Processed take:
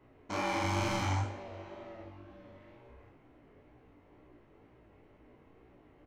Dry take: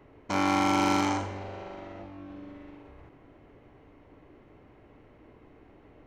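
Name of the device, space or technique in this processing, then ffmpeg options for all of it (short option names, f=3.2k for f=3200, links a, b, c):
double-tracked vocal: -filter_complex "[0:a]asplit=2[a][b];[b]adelay=33,volume=-2dB[c];[a][c]amix=inputs=2:normalize=0,flanger=delay=15.5:depth=6.3:speed=2.1,asplit=3[d][e][f];[d]afade=t=out:st=0.63:d=0.02[g];[e]asubboost=boost=9:cutoff=170,afade=t=in:st=0.63:d=0.02,afade=t=out:st=1.23:d=0.02[h];[f]afade=t=in:st=1.23:d=0.02[i];[g][h][i]amix=inputs=3:normalize=0,volume=-4.5dB"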